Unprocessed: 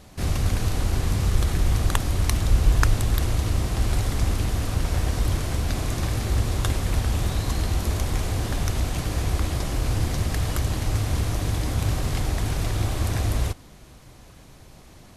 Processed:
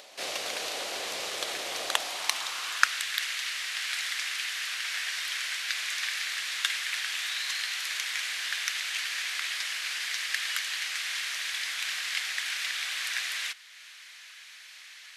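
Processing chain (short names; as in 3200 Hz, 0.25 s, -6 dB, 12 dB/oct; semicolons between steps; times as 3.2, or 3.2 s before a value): high-pass sweep 570 Hz -> 1700 Hz, 1.84–3.06; upward compressor, threshold -44 dBFS; weighting filter D; gain -6.5 dB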